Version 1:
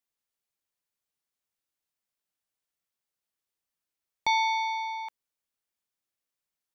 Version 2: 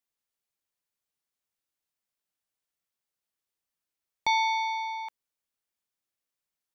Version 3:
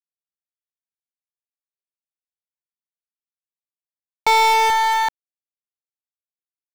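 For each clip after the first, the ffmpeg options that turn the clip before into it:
-af anull
-filter_complex "[0:a]acrusher=bits=5:dc=4:mix=0:aa=0.000001,asplit=2[a][b];[b]highpass=f=720:p=1,volume=29dB,asoftclip=type=tanh:threshold=-15dB[c];[a][c]amix=inputs=2:normalize=0,lowpass=f=3.2k:p=1,volume=-6dB,volume=6.5dB"

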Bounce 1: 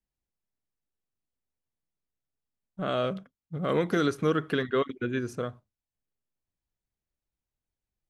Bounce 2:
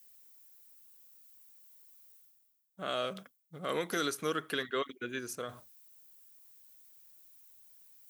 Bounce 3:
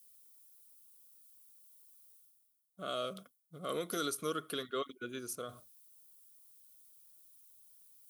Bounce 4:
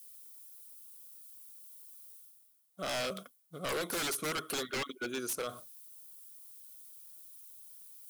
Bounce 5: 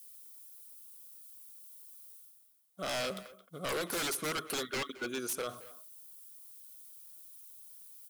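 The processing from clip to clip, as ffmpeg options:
-af "aemphasis=mode=production:type=riaa,areverse,acompressor=mode=upward:threshold=-36dB:ratio=2.5,areverse,volume=-5dB"
-af "superequalizer=9b=0.316:11b=0.316:12b=0.562:16b=2,volume=-3dB"
-af "highpass=f=280:p=1,aeval=exprs='0.0133*(abs(mod(val(0)/0.0133+3,4)-2)-1)':c=same,volume=8.5dB"
-filter_complex "[0:a]asplit=2[a][b];[b]adelay=220,highpass=300,lowpass=3.4k,asoftclip=type=hard:threshold=-39dB,volume=-12dB[c];[a][c]amix=inputs=2:normalize=0"

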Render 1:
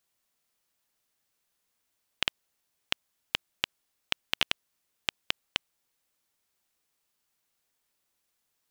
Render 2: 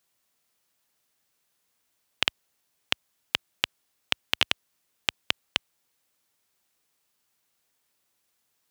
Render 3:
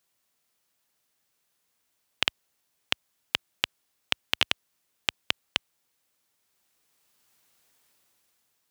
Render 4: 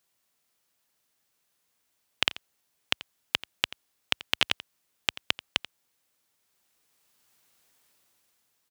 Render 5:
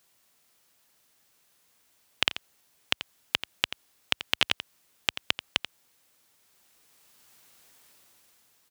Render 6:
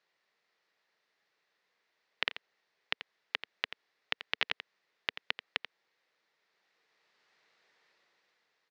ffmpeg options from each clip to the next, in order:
-af "highpass=58,volume=4dB"
-af "dynaudnorm=f=490:g=5:m=10dB,volume=-1dB"
-af "aecho=1:1:86:0.141"
-af "alimiter=limit=-10dB:level=0:latency=1:release=170,volume=8.5dB"
-af "highpass=230,equalizer=f=260:t=q:w=4:g=-9,equalizer=f=450:t=q:w=4:g=4,equalizer=f=1.9k:t=q:w=4:g=7,equalizer=f=3.1k:t=q:w=4:g=-4,lowpass=f=4.5k:w=0.5412,lowpass=f=4.5k:w=1.3066,volume=-7dB"

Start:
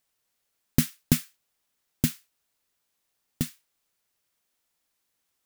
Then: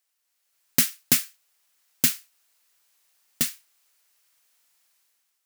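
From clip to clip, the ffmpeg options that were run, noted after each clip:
-af "highpass=f=1.3k:p=1,equalizer=f=3.5k:w=5.3:g=-2.5,dynaudnorm=f=210:g=5:m=10dB,volume=1dB"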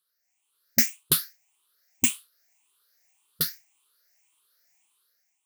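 -af "afftfilt=real='re*pow(10,17/40*sin(2*PI*(0.63*log(max(b,1)*sr/1024/100)/log(2)-(1.8)*(pts-256)/sr)))':imag='im*pow(10,17/40*sin(2*PI*(0.63*log(max(b,1)*sr/1024/100)/log(2)-(1.8)*(pts-256)/sr)))':win_size=1024:overlap=0.75,volume=-5dB"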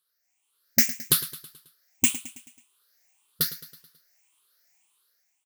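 -af "aecho=1:1:108|216|324|432|540:0.178|0.0925|0.0481|0.025|0.013,volume=1dB"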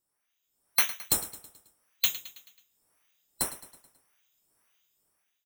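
-af "afftfilt=real='real(if(lt(b,736),b+184*(1-2*mod(floor(b/184),2)),b),0)':imag='imag(if(lt(b,736),b+184*(1-2*mod(floor(b/184),2)),b),0)':win_size=2048:overlap=0.75,volume=-4.5dB"

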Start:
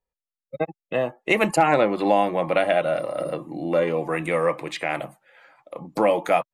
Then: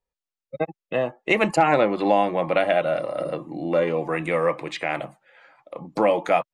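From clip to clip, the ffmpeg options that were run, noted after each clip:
-af "lowpass=7.1k"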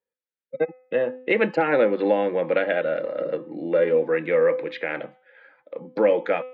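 -af "highpass=200,equalizer=f=240:t=q:w=4:g=5,equalizer=f=490:t=q:w=4:g=10,equalizer=f=700:t=q:w=4:g=-9,equalizer=f=1.1k:t=q:w=4:g=-9,equalizer=f=1.6k:t=q:w=4:g=7,equalizer=f=2.8k:t=q:w=4:g=-4,lowpass=f=3.7k:w=0.5412,lowpass=f=3.7k:w=1.3066,bandreject=f=254.5:t=h:w=4,bandreject=f=509:t=h:w=4,bandreject=f=763.5:t=h:w=4,bandreject=f=1.018k:t=h:w=4,bandreject=f=1.2725k:t=h:w=4,bandreject=f=1.527k:t=h:w=4,bandreject=f=1.7815k:t=h:w=4,bandreject=f=2.036k:t=h:w=4,bandreject=f=2.2905k:t=h:w=4,bandreject=f=2.545k:t=h:w=4,bandreject=f=2.7995k:t=h:w=4,bandreject=f=3.054k:t=h:w=4,bandreject=f=3.3085k:t=h:w=4,bandreject=f=3.563k:t=h:w=4,bandreject=f=3.8175k:t=h:w=4,volume=-2dB"

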